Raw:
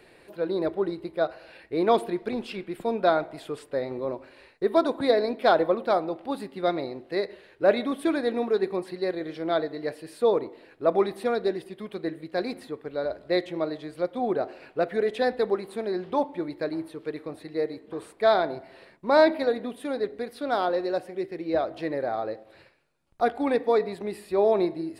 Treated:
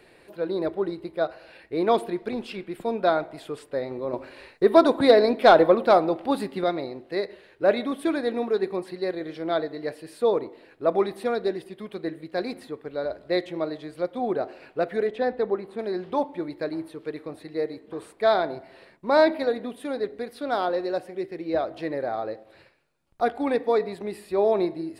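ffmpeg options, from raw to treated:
-filter_complex "[0:a]asettb=1/sr,asplit=3[s0][s1][s2];[s0]atrim=end=4.134[s3];[s1]atrim=start=4.13:end=6.64,asetpts=PTS-STARTPTS,afade=t=in:d=0.004:c=qsin,afade=t=out:st=2.506:d=0.004:c=qsin,acontrast=63[s4];[s2]atrim=start=6.636[s5];[s3][s4]acrossfade=d=0.004:c1=hsin:c2=qsin[s6];[s6][s5]acrossfade=d=0.004:c1=qsin:c2=hsin,asettb=1/sr,asplit=3[s7][s8][s9];[s7]atrim=end=15.074[s10];[s8]atrim=start=15.07:end=15.79,asetpts=PTS-STARTPTS,afade=t=in:d=0.004:c=qsin,afade=t=out:st=0.716:d=0.004:c=qsin,lowpass=f=1700:p=1[s11];[s9]atrim=start=15.786[s12];[s10][s11]acrossfade=d=0.004:c1=hsin:c2=qsin[s13];[s13][s12]acrossfade=d=0.004:c1=qsin:c2=hsin"

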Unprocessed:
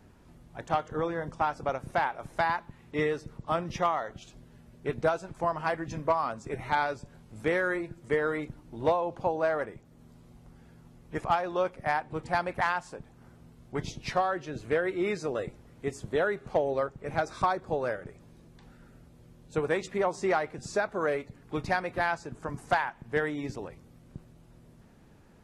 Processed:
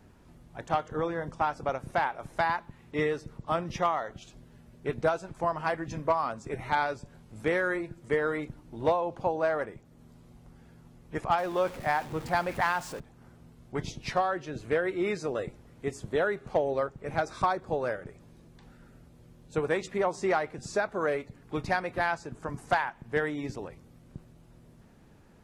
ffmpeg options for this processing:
-filter_complex "[0:a]asettb=1/sr,asplit=3[s0][s1][s2];[s0]atrim=end=11.384[s3];[s1]atrim=start=11.38:end=13,asetpts=PTS-STARTPTS,afade=t=in:d=0.004:c=qsin,afade=t=out:st=1.616:d=0.004:c=qsin,aeval=exprs='val(0)+0.5*0.01*sgn(val(0))':c=same[s4];[s2]atrim=start=12.996[s5];[s3][s4]acrossfade=d=0.004:c1=hsin:c2=qsin[s6];[s6][s5]acrossfade=d=0.004:c1=qsin:c2=hsin"

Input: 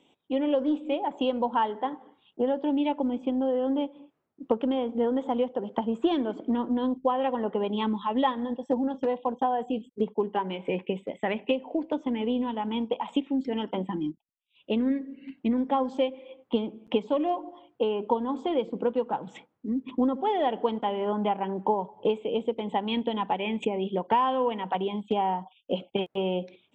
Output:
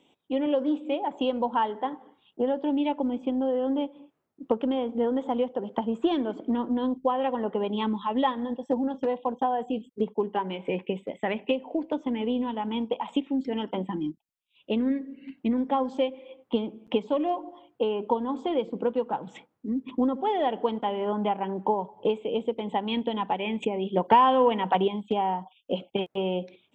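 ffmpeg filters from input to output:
-filter_complex "[0:a]asettb=1/sr,asplit=3[s0][s1][s2];[s0]atrim=end=0.464[s3];[s1]atrim=start=0.46:end=1.13,asetpts=PTS-STARTPTS,afade=t=in:d=0.004:c=qsin,afade=t=out:st=0.666:d=0.004:c=qsin,highpass=120[s4];[s2]atrim=start=1.126[s5];[s3][s4]acrossfade=d=0.004:c1=hsin:c2=qsin[s6];[s6][s5]acrossfade=d=0.004:c1=qsin:c2=hsin,asettb=1/sr,asplit=3[s7][s8][s9];[s7]atrim=end=23.964[s10];[s8]atrim=start=23.96:end=24.88,asetpts=PTS-STARTPTS,afade=t=in:d=0.004:c=qsin,afade=t=out:st=0.916:d=0.004:c=qsin,acontrast=32[s11];[s9]atrim=start=24.876[s12];[s10][s11]acrossfade=d=0.004:c1=hsin:c2=qsin[s13];[s13][s12]acrossfade=d=0.004:c1=qsin:c2=hsin"

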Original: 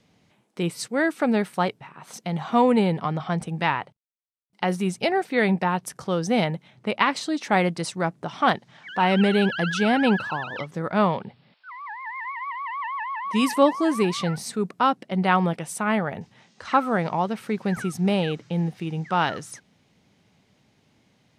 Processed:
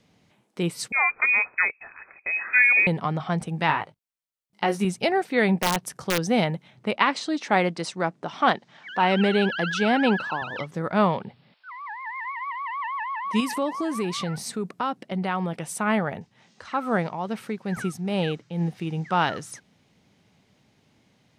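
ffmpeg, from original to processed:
-filter_complex "[0:a]asettb=1/sr,asplit=3[s0][s1][s2];[s0]atrim=end=0.924[s3];[s1]atrim=start=0.92:end=2.87,asetpts=PTS-STARTPTS,afade=t=in:d=0.004:c=qsin,afade=t=out:st=1.946:d=0.004:c=qsin,lowpass=f=2300:t=q:w=0.5098,lowpass=f=2300:t=q:w=0.6013,lowpass=f=2300:t=q:w=0.9,lowpass=f=2300:t=q:w=2.563,afreqshift=-2700[s4];[s2]atrim=start=2.866[s5];[s3][s4]acrossfade=d=0.004:c1=hsin:c2=qsin[s6];[s6][s5]acrossfade=d=0.004:c1=qsin:c2=hsin,asettb=1/sr,asplit=3[s7][s8][s9];[s7]atrim=end=3.674[s10];[s8]atrim=start=3.67:end=4.85,asetpts=PTS-STARTPTS,afade=t=in:d=0.004:c=qsin,afade=t=out:st=1.176:d=0.004:c=qsin,asplit=2[s11][s12];[s12]adelay=19,volume=0.596[s13];[s11][s13]amix=inputs=2:normalize=0,atrim=end_sample=52038[s14];[s9]atrim=start=4.846[s15];[s10][s14]acrossfade=d=0.004:c1=hsin:c2=qsin[s16];[s16][s15]acrossfade=d=0.004:c1=qsin:c2=hsin,asettb=1/sr,asplit=3[s17][s18][s19];[s17]atrim=end=5.554[s20];[s18]atrim=start=5.55:end=6.21,asetpts=PTS-STARTPTS,afade=t=in:d=0.004:c=qsin,afade=t=out:st=0.656:d=0.004:c=qsin,aeval=exprs='(mod(5.31*val(0)+1,2)-1)/5.31':c=same[s21];[s19]atrim=start=6.206[s22];[s20][s21]acrossfade=d=0.004:c1=hsin:c2=qsin[s23];[s23][s22]acrossfade=d=0.004:c1=qsin:c2=hsin,asettb=1/sr,asplit=3[s24][s25][s26];[s24]atrim=end=6.954[s27];[s25]atrim=start=6.95:end=10.42,asetpts=PTS-STARTPTS,afade=t=in:d=0.004:c=qsin,afade=t=out:st=3.466:d=0.004:c=qsin,highpass=190,lowpass=7300[s28];[s26]atrim=start=10.416[s29];[s27][s28]acrossfade=d=0.004:c1=hsin:c2=qsin[s30];[s30][s29]acrossfade=d=0.004:c1=qsin:c2=hsin,asettb=1/sr,asplit=3[s31][s32][s33];[s31]atrim=end=13.404[s34];[s32]atrim=start=13.4:end=15.65,asetpts=PTS-STARTPTS,afade=t=in:d=0.004:c=qsin,afade=t=out:st=2.246:d=0.004:c=qsin,acompressor=threshold=0.0562:ratio=2.5:attack=3.2:release=140:knee=1:detection=peak[s35];[s33]atrim=start=15.646[s36];[s34][s35]acrossfade=d=0.004:c1=hsin:c2=qsin[s37];[s37][s36]acrossfade=d=0.004:c1=qsin:c2=hsin,asplit=3[s38][s39][s40];[s38]afade=t=out:st=16.16:d=0.02[s41];[s39]tremolo=f=2.3:d=0.59,afade=t=in:st=16.16:d=0.02,afade=t=out:st=18.6:d=0.02[s42];[s40]afade=t=in:st=18.6:d=0.02[s43];[s41][s42][s43]amix=inputs=3:normalize=0"

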